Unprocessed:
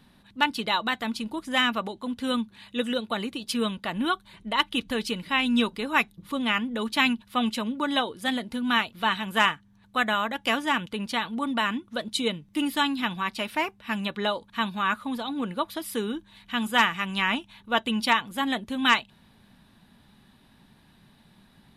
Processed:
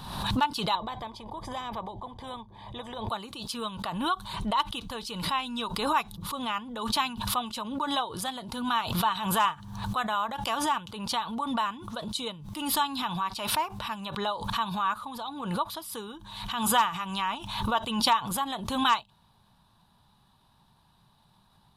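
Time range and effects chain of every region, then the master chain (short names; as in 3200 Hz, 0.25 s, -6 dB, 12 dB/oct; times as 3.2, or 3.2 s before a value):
0.75–3.09 running mean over 32 samples + spectral compressor 2:1
whole clip: ten-band EQ 125 Hz +3 dB, 250 Hz -10 dB, 500 Hz -4 dB, 1000 Hz +10 dB, 2000 Hz -12 dB, 4000 Hz +3 dB; backwards sustainer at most 53 dB/s; gain -5 dB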